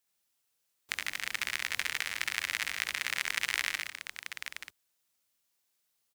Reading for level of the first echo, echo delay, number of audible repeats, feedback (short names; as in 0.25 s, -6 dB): -3.0 dB, 69 ms, 3, no steady repeat